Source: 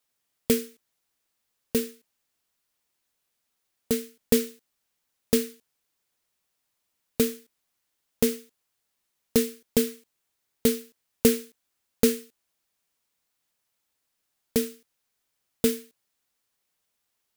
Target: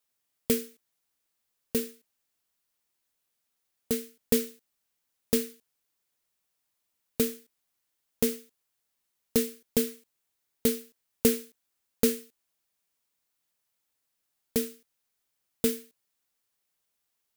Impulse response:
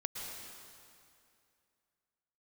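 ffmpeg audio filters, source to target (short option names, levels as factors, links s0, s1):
-filter_complex "[0:a]asplit=2[s0][s1];[1:a]atrim=start_sample=2205,atrim=end_sample=4410,highshelf=f=7200:g=9.5[s2];[s1][s2]afir=irnorm=-1:irlink=0,volume=0.473[s3];[s0][s3]amix=inputs=2:normalize=0,volume=0.473"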